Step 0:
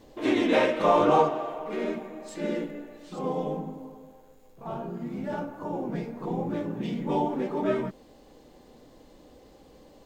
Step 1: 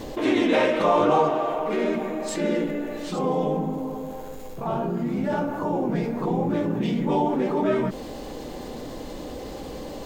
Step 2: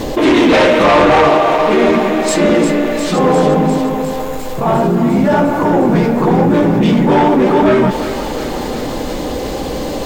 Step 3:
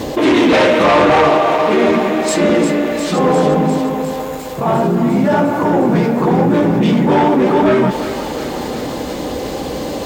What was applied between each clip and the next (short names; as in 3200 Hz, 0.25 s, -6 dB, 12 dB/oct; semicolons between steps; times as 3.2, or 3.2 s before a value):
fast leveller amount 50%
in parallel at -7.5 dB: sine folder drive 11 dB, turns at -7.5 dBFS; on the sum: thinning echo 0.352 s, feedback 76%, high-pass 680 Hz, level -8.5 dB; gain +4.5 dB
HPF 63 Hz; gain -1.5 dB